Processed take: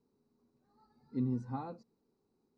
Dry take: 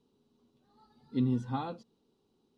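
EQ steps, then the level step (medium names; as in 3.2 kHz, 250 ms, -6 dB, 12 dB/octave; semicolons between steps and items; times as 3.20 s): dynamic bell 1.8 kHz, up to -5 dB, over -56 dBFS, Q 1.3; Butterworth band-stop 3.2 kHz, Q 1.8; distance through air 55 m; -4.5 dB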